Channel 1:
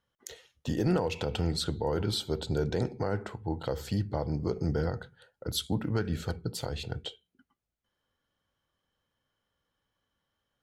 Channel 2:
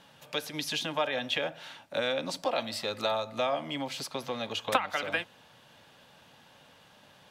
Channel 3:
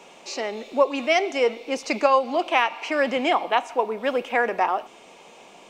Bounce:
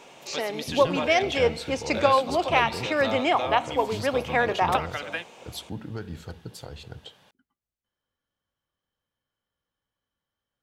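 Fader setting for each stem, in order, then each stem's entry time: -5.5, -1.5, -1.5 dB; 0.00, 0.00, 0.00 s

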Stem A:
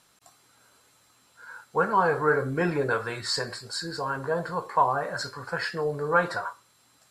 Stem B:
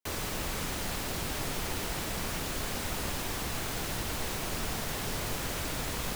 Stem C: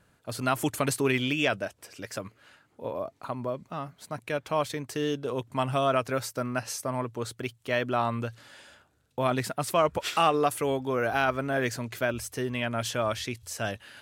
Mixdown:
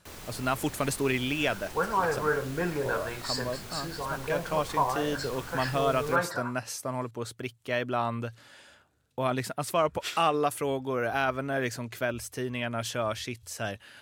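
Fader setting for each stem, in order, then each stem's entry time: -4.5, -9.5, -2.0 dB; 0.00, 0.00, 0.00 s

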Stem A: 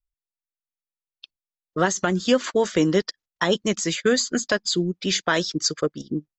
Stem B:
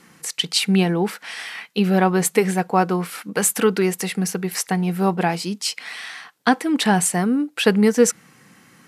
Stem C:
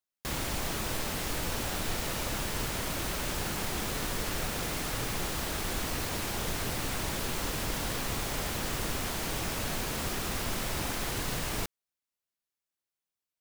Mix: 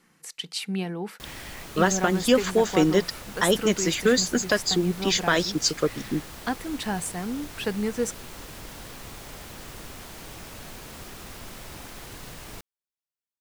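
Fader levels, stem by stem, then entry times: -0.5, -12.0, -8.0 dB; 0.00, 0.00, 0.95 s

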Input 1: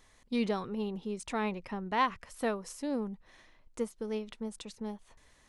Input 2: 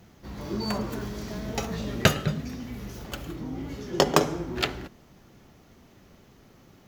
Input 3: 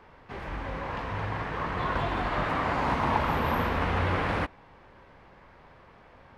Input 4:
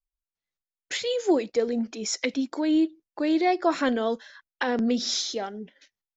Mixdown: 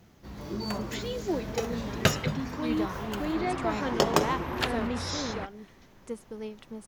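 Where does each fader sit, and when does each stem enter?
-3.0, -3.5, -9.5, -8.5 dB; 2.30, 0.00, 1.00, 0.00 s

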